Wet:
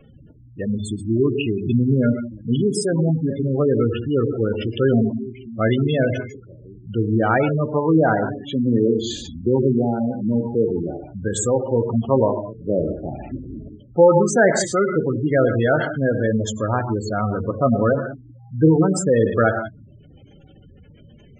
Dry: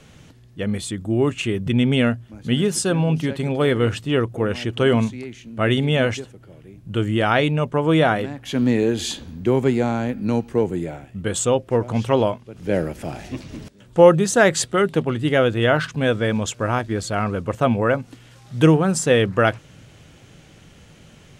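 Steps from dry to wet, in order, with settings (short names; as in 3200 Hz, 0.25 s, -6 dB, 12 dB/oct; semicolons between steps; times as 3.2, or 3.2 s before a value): non-linear reverb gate 0.2 s flat, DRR 5 dB; spectral gate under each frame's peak -15 dB strong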